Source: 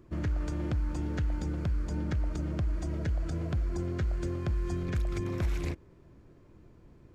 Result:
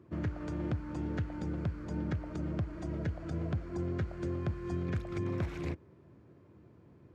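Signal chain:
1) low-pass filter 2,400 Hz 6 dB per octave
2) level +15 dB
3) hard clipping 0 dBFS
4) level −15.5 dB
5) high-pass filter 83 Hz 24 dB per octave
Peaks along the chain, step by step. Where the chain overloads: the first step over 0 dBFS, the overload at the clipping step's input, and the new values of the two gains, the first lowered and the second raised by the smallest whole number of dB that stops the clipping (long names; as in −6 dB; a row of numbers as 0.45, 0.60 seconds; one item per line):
−21.0, −6.0, −6.0, −21.5, −22.0 dBFS
no step passes full scale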